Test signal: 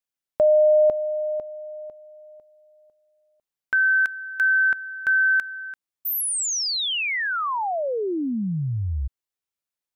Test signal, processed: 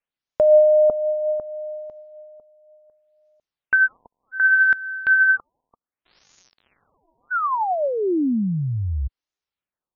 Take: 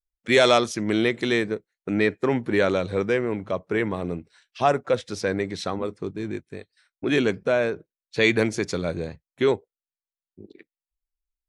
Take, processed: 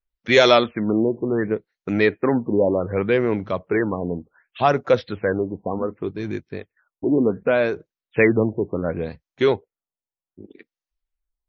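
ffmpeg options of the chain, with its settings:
-af "aphaser=in_gain=1:out_gain=1:delay=4.3:decay=0.24:speed=0.61:type=sinusoidal,afftfilt=real='re*lt(b*sr/1024,1000*pow(7100/1000,0.5+0.5*sin(2*PI*0.67*pts/sr)))':imag='im*lt(b*sr/1024,1000*pow(7100/1000,0.5+0.5*sin(2*PI*0.67*pts/sr)))':win_size=1024:overlap=0.75,volume=3dB"

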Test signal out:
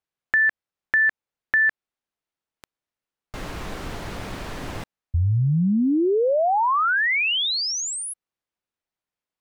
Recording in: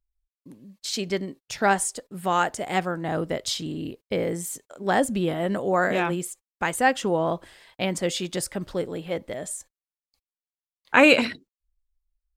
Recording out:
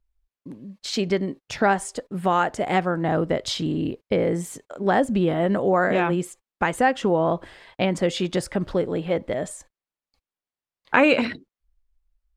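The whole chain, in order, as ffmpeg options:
-af "aemphasis=mode=reproduction:type=75kf,acompressor=threshold=-27dB:ratio=2,volume=7.5dB"

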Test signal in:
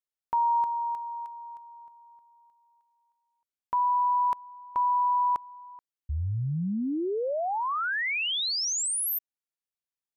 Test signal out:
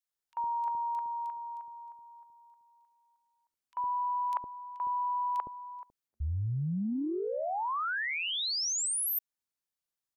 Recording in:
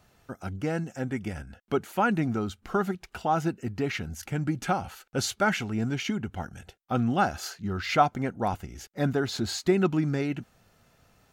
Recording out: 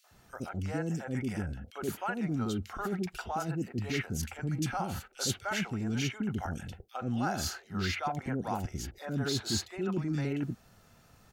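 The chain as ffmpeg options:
-filter_complex "[0:a]areverse,acompressor=threshold=-35dB:ratio=12:attack=56:release=36:knee=6:detection=rms,areverse,acrossover=split=520|2500[a][b][c];[b]adelay=40[d];[a]adelay=110[e];[e][d][c]amix=inputs=3:normalize=0,volume=2.5dB"

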